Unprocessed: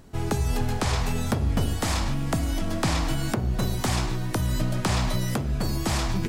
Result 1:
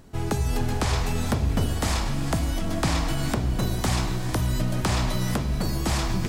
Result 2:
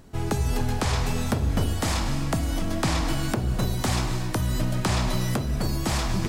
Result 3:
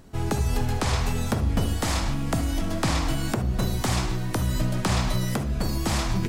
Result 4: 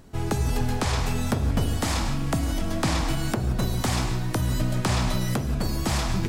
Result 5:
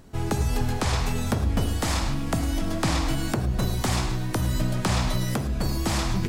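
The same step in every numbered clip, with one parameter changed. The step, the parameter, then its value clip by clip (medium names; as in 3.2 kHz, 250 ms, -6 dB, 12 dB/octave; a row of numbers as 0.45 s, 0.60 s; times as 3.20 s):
gated-style reverb, gate: 480 ms, 310 ms, 90 ms, 200 ms, 130 ms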